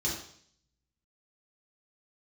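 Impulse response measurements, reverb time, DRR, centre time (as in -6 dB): 0.60 s, -6.0 dB, 40 ms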